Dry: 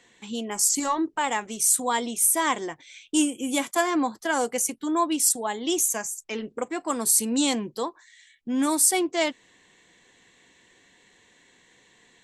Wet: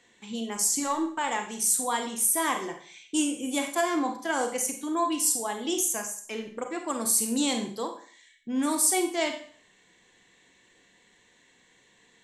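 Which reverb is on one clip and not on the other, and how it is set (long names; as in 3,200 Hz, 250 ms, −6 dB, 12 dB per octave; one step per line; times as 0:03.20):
four-comb reverb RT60 0.48 s, combs from 31 ms, DRR 5 dB
level −4 dB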